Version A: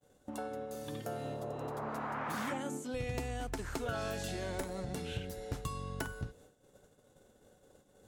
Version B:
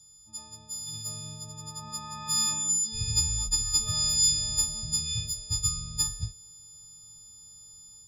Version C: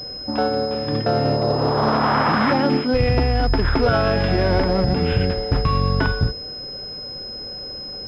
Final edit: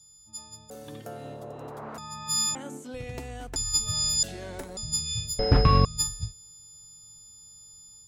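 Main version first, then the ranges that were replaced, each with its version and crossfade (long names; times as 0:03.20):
B
0:00.70–0:01.98: punch in from A
0:02.55–0:03.56: punch in from A
0:04.23–0:04.77: punch in from A
0:05.39–0:05.85: punch in from C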